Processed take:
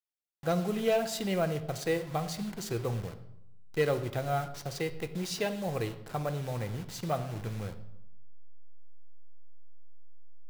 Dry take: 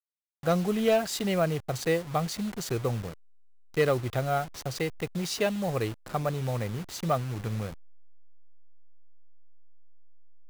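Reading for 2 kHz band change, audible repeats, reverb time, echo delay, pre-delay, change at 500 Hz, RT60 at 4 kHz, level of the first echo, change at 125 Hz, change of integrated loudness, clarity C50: -3.5 dB, none, 0.85 s, none, 3 ms, -3.5 dB, 0.60 s, none, -3.5 dB, -3.5 dB, 12.5 dB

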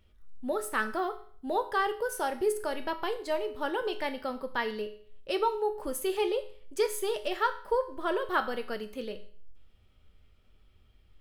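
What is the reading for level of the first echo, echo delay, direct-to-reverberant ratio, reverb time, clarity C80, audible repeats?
none, none, 6.5 dB, 0.50 s, 16.0 dB, none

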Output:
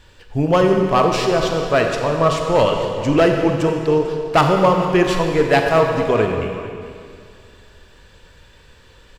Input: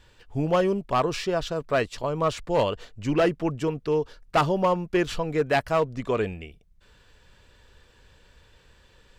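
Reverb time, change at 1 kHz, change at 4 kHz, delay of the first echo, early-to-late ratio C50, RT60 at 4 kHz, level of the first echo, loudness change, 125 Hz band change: 2.3 s, +8.5 dB, +9.0 dB, 0.444 s, 3.5 dB, 2.1 s, -16.5 dB, +9.0 dB, +9.0 dB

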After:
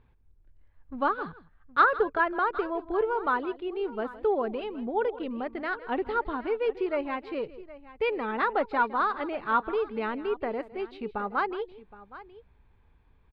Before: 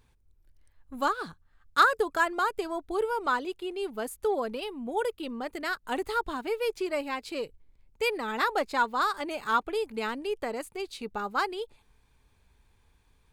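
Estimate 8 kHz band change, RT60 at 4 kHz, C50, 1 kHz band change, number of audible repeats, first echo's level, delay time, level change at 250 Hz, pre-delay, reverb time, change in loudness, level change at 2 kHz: under -30 dB, none, none, +1.0 dB, 2, -17.0 dB, 0.161 s, +2.5 dB, none, none, +1.0 dB, -0.5 dB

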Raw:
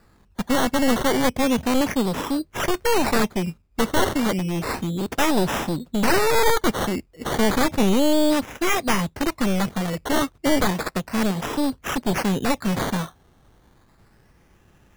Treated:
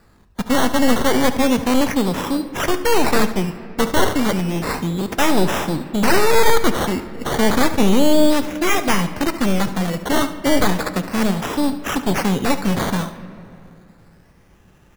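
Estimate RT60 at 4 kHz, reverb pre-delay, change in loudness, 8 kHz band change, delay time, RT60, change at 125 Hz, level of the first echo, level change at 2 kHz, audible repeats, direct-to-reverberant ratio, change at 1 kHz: 1.6 s, 7 ms, +3.5 dB, +3.5 dB, 72 ms, 2.6 s, +3.5 dB, -13.5 dB, +3.5 dB, 2, 9.5 dB, +3.5 dB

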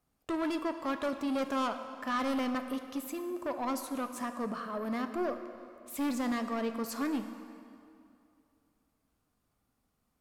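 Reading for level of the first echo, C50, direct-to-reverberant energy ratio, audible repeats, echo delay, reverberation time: none, 8.5 dB, 7.5 dB, none, none, 2.6 s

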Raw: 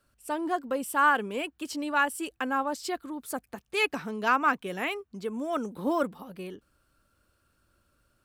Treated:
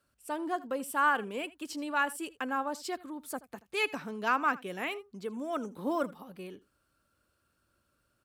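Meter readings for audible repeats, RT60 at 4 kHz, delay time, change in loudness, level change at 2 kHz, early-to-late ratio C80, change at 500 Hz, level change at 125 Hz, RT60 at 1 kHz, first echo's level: 1, none, 80 ms, -4.0 dB, -4.0 dB, none, -4.0 dB, -5.0 dB, none, -20.0 dB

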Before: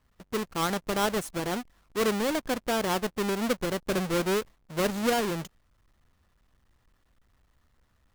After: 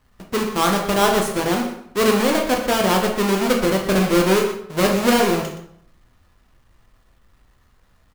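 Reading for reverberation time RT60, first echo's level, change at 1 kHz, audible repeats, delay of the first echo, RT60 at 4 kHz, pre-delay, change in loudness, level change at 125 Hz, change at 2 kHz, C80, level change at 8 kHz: 0.65 s, -11.5 dB, +10.5 dB, 1, 0.121 s, 0.50 s, 12 ms, +10.0 dB, +10.0 dB, +9.5 dB, 8.0 dB, +9.5 dB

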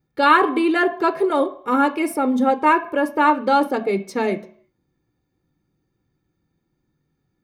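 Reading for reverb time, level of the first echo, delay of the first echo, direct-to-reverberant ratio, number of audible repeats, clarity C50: 0.60 s, none, none, 8.0 dB, none, 15.0 dB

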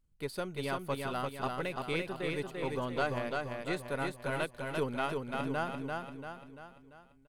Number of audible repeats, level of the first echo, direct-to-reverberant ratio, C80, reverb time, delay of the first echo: 6, -3.5 dB, none, none, none, 0.342 s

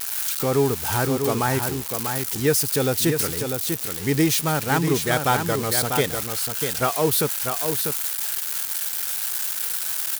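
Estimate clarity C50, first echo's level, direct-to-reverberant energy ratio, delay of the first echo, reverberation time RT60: none, -6.0 dB, none, 0.645 s, none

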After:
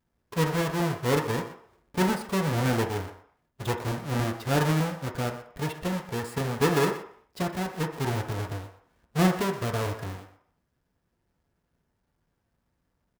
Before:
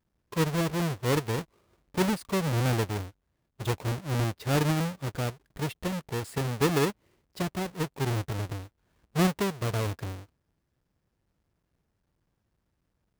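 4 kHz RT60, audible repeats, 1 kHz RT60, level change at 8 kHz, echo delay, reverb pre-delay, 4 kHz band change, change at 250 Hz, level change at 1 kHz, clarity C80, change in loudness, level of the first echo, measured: 0.60 s, 1, 0.65 s, 0.0 dB, 0.123 s, 3 ms, +0.5 dB, +1.5 dB, +3.5 dB, 11.0 dB, +1.5 dB, -14.5 dB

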